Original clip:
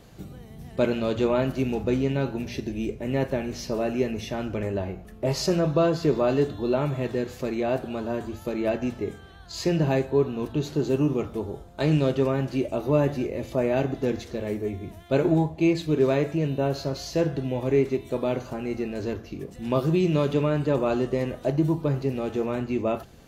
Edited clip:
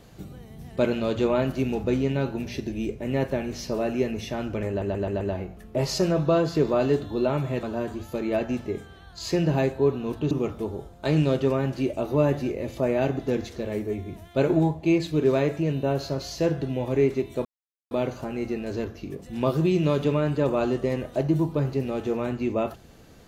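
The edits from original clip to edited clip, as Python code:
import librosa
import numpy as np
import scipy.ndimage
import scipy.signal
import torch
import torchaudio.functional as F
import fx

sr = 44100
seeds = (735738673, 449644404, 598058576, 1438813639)

y = fx.edit(x, sr, fx.stutter(start_s=4.69, slice_s=0.13, count=5),
    fx.cut(start_s=7.11, length_s=0.85),
    fx.cut(start_s=10.64, length_s=0.42),
    fx.insert_silence(at_s=18.2, length_s=0.46), tone=tone)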